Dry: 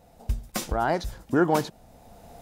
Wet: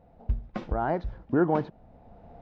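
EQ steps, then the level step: air absorption 150 m; tape spacing loss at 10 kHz 35 dB; 0.0 dB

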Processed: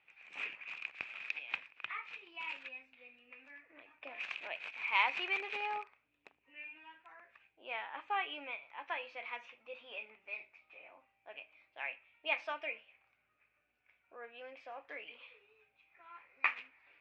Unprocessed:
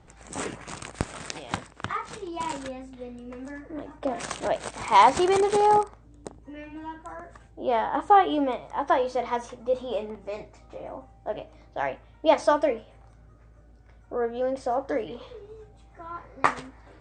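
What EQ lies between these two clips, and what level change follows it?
band-pass 2500 Hz, Q 12; air absorption 160 m; +11.0 dB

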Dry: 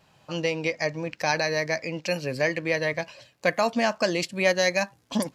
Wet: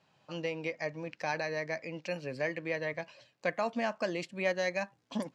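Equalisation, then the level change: dynamic EQ 4900 Hz, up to -7 dB, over -44 dBFS, Q 1.3; BPF 120–6300 Hz; -8.5 dB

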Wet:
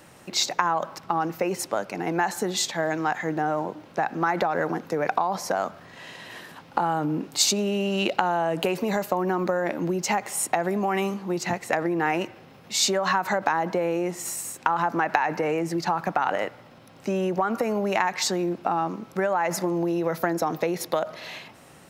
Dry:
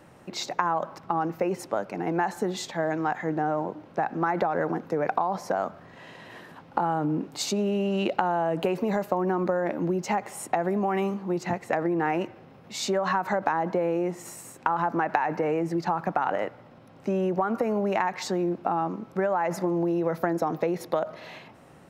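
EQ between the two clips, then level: high shelf 2200 Hz +12 dB; 0.0 dB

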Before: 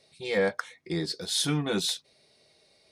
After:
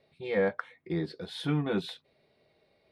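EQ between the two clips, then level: air absorption 490 m; high shelf 8700 Hz +12 dB; 0.0 dB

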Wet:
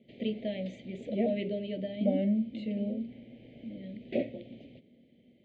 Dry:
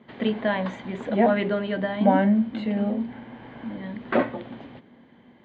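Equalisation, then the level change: elliptic band-stop 600–2300 Hz, stop band 70 dB; -7.5 dB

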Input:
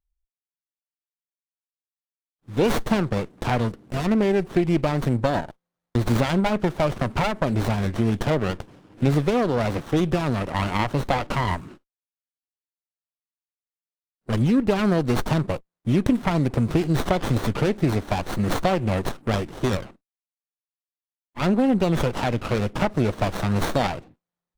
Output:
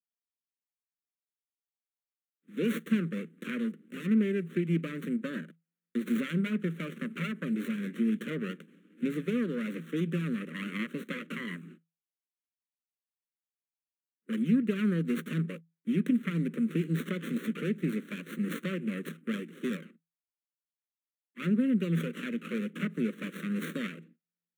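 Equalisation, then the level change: rippled Chebyshev high-pass 160 Hz, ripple 6 dB; Butterworth band-stop 750 Hz, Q 0.92; fixed phaser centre 2100 Hz, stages 4; -2.0 dB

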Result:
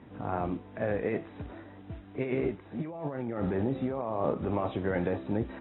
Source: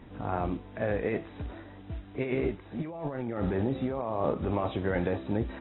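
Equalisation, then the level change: HPF 91 Hz; air absorption 200 m; 0.0 dB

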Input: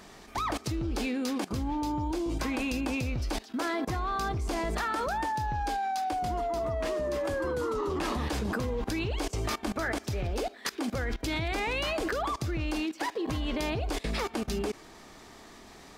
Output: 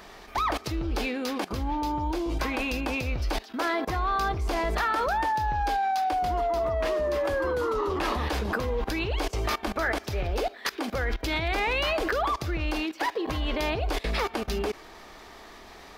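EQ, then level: graphic EQ 125/250/8000 Hz -8/-6/-9 dB; +5.5 dB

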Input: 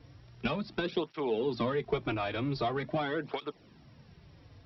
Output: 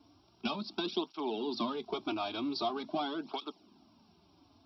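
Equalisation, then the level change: HPF 140 Hz 12 dB/oct; dynamic EQ 4600 Hz, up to +8 dB, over -55 dBFS, Q 0.74; fixed phaser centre 500 Hz, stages 6; 0.0 dB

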